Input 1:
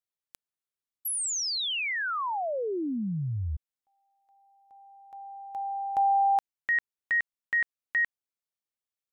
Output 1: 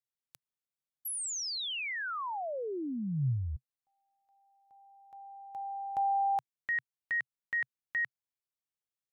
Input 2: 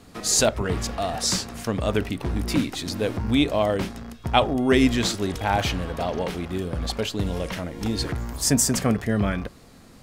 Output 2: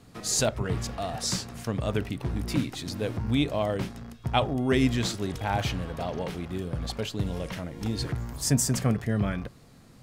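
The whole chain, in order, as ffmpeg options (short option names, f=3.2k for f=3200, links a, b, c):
-af "equalizer=f=130:t=o:w=0.61:g=8.5,volume=-6dB"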